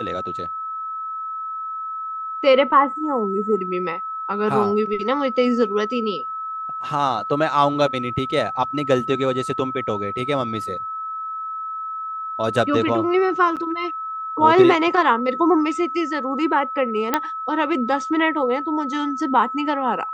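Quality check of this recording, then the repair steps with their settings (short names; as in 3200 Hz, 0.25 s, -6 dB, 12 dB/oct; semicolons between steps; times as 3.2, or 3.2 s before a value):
tone 1300 Hz -26 dBFS
13.56–13.57 gap 7.6 ms
17.14 pop -4 dBFS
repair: de-click; notch 1300 Hz, Q 30; interpolate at 13.56, 7.6 ms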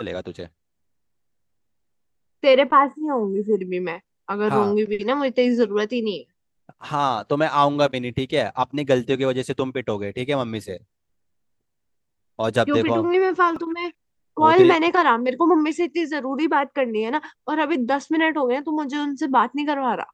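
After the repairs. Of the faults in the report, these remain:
none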